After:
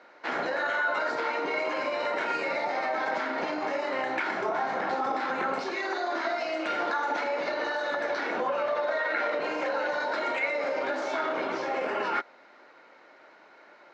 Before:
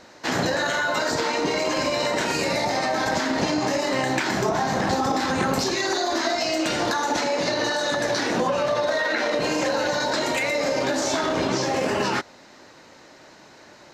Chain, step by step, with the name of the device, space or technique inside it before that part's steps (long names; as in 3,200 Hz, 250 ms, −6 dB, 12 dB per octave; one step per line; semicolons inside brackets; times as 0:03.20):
tin-can telephone (band-pass filter 410–2,400 Hz; hollow resonant body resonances 1,400/2,200 Hz, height 10 dB)
level −4.5 dB